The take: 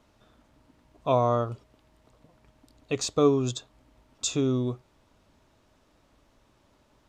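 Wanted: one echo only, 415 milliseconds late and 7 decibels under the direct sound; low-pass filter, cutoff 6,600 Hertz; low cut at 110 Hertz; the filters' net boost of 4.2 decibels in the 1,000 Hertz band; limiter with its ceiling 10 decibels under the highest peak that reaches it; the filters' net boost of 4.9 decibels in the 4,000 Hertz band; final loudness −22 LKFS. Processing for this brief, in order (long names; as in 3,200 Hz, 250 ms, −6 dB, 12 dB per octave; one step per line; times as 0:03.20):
high-pass filter 110 Hz
low-pass filter 6,600 Hz
parametric band 1,000 Hz +5 dB
parametric band 4,000 Hz +6 dB
brickwall limiter −17 dBFS
single-tap delay 415 ms −7 dB
level +8 dB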